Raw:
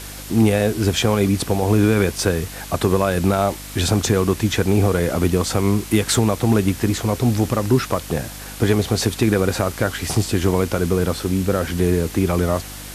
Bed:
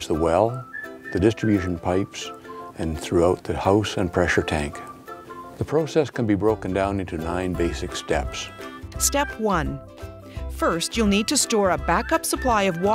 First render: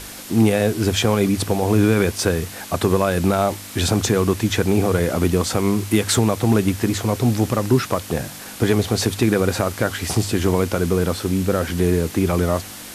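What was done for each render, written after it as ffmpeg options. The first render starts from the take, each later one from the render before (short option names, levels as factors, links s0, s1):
-af "bandreject=f=50:t=h:w=4,bandreject=f=100:t=h:w=4,bandreject=f=150:t=h:w=4"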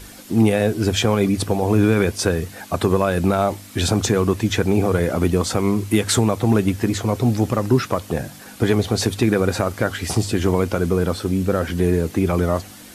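-af "afftdn=nr=8:nf=-36"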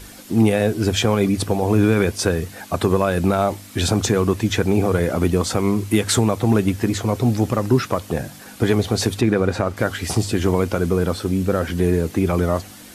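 -filter_complex "[0:a]asettb=1/sr,asplit=3[s0][s1][s2];[s0]atrim=end=9.214[s3];[s1]atrim=start=9.21:end=9.77,asetpts=PTS-STARTPTS,afade=t=in:d=0.004:c=qsin,afade=t=out:st=0.556:d=0.004:c=qsin,aemphasis=mode=reproduction:type=50kf[s4];[s2]atrim=start=9.766[s5];[s3][s4]acrossfade=d=0.004:c1=hsin:c2=qsin[s6];[s6][s5]acrossfade=d=0.004:c1=qsin:c2=hsin"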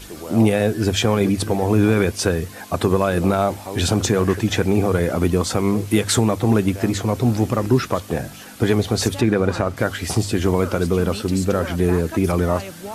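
-filter_complex "[1:a]volume=0.224[s0];[0:a][s0]amix=inputs=2:normalize=0"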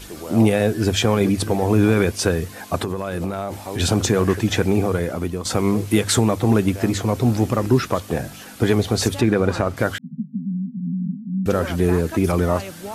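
-filter_complex "[0:a]asettb=1/sr,asplit=3[s0][s1][s2];[s0]atrim=end=2.824[s3];[s1]atrim=start=2.82:end=3.8,asetpts=PTS-STARTPTS,afade=t=in:d=0.004:c=qsin,afade=t=out:st=0.976:d=0.004:c=qsin,acompressor=threshold=0.1:ratio=10:attack=3.2:release=140:knee=1:detection=peak[s4];[s2]atrim=start=3.796[s5];[s3][s4]acrossfade=d=0.004:c1=hsin:c2=qsin[s6];[s6][s5]acrossfade=d=0.004:c1=qsin:c2=hsin,asettb=1/sr,asplit=3[s7][s8][s9];[s7]atrim=end=9.984[s10];[s8]atrim=start=9.98:end=11.46,asetpts=PTS-STARTPTS,afade=t=in:d=0.004:c=qsin,afade=t=out:st=1.476:d=0.004:c=qsin,asuperpass=centerf=190:order=20:qfactor=1.7[s11];[s9]atrim=start=11.456[s12];[s10][s11]acrossfade=d=0.004:c1=hsin:c2=qsin[s13];[s13][s12]acrossfade=d=0.004:c1=qsin:c2=hsin,asplit=2[s14][s15];[s14]atrim=end=5.45,asetpts=PTS-STARTPTS,afade=t=out:st=4.66:d=0.79:silence=0.298538[s16];[s15]atrim=start=5.45,asetpts=PTS-STARTPTS,afade=t=in:d=0.004:c=hsin:silence=0.298538[s17];[s16][s17]concat=n=2:v=0:a=1"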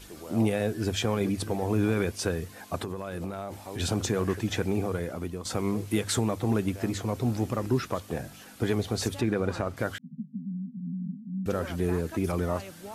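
-af "volume=0.335"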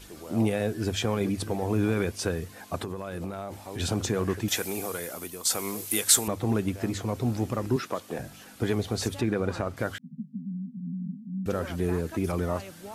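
-filter_complex "[0:a]asettb=1/sr,asplit=3[s0][s1][s2];[s0]atrim=end=4.484[s3];[s1]atrim=start=4.48:end=6.28,asetpts=PTS-STARTPTS,afade=t=in:d=0.004:c=qsin,afade=t=out:st=1.796:d=0.004:c=qsin,aemphasis=mode=production:type=riaa[s4];[s2]atrim=start=6.276[s5];[s3][s4]acrossfade=d=0.004:c1=hsin:c2=qsin[s6];[s6][s5]acrossfade=d=0.004:c1=qsin:c2=hsin,asettb=1/sr,asplit=3[s7][s8][s9];[s7]atrim=end=7.764[s10];[s8]atrim=start=7.76:end=8.19,asetpts=PTS-STARTPTS,afade=t=in:d=0.004:c=qsin,afade=t=out:st=0.426:d=0.004:c=qsin,highpass=210[s11];[s9]atrim=start=8.186[s12];[s10][s11]acrossfade=d=0.004:c1=hsin:c2=qsin[s13];[s13][s12]acrossfade=d=0.004:c1=qsin:c2=hsin"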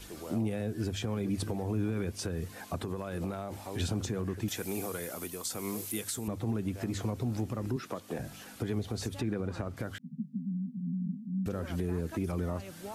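-filter_complex "[0:a]acrossover=split=320[s0][s1];[s1]acompressor=threshold=0.0126:ratio=2.5[s2];[s0][s2]amix=inputs=2:normalize=0,alimiter=limit=0.0668:level=0:latency=1:release=163"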